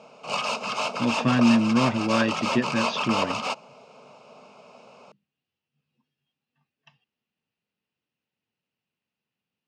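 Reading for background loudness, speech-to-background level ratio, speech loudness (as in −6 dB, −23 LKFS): −27.5 LKFS, 3.5 dB, −24.0 LKFS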